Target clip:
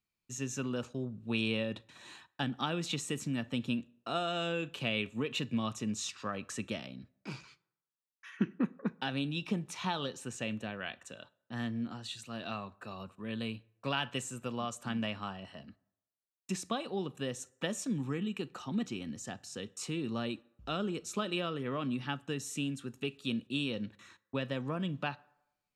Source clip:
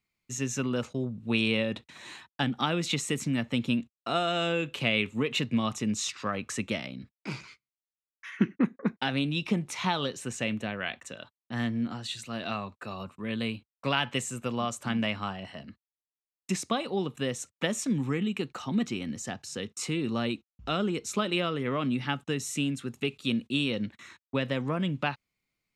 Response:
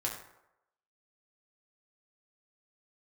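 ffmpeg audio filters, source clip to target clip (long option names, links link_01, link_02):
-filter_complex "[0:a]bandreject=frequency=2100:width=7.1,asplit=2[link_01][link_02];[1:a]atrim=start_sample=2205,adelay=36[link_03];[link_02][link_03]afir=irnorm=-1:irlink=0,volume=-24dB[link_04];[link_01][link_04]amix=inputs=2:normalize=0,volume=-6dB"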